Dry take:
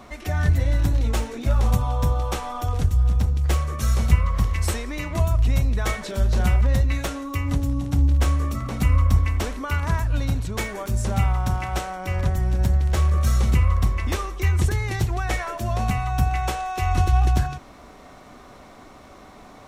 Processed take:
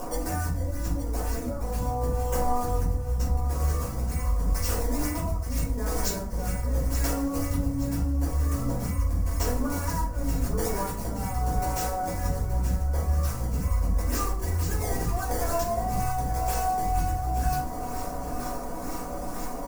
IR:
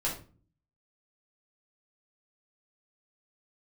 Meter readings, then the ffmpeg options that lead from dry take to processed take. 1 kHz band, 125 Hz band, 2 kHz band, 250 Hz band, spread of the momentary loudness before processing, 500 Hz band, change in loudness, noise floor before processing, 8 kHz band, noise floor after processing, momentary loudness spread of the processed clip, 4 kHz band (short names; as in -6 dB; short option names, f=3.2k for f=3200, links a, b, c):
-1.0 dB, -7.5 dB, -8.0 dB, -2.0 dB, 7 LU, 0.0 dB, -6.0 dB, -46 dBFS, +1.0 dB, -33 dBFS, 5 LU, -5.5 dB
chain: -filter_complex "[0:a]acrossover=split=180|1500[a][b][c];[c]acrusher=samples=19:mix=1:aa=0.000001:lfo=1:lforange=30.4:lforate=2.1[d];[a][b][d]amix=inputs=3:normalize=0,highshelf=f=3.6k:g=-10,aecho=1:1:4.1:0.46,areverse,acompressor=threshold=-27dB:ratio=6,areverse,lowshelf=f=160:g=-3.5,alimiter=level_in=2dB:limit=-24dB:level=0:latency=1:release=129,volume=-2dB,acompressor=mode=upward:threshold=-35dB:ratio=2.5,aexciter=amount=10.7:drive=4.7:freq=5.1k,aecho=1:1:875|1750|2625|3500|4375:0.266|0.13|0.0639|0.0313|0.0153[e];[1:a]atrim=start_sample=2205,afade=t=out:st=0.2:d=0.01,atrim=end_sample=9261[f];[e][f]afir=irnorm=-1:irlink=0"